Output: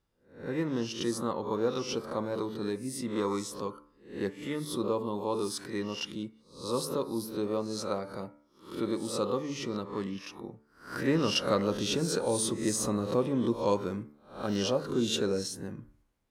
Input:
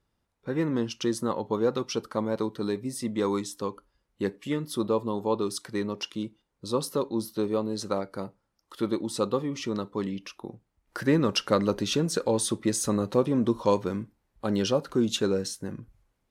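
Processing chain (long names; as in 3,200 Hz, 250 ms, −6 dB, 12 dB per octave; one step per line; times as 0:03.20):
peak hold with a rise ahead of every peak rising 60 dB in 0.44 s
hum removal 73.51 Hz, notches 32
level −4.5 dB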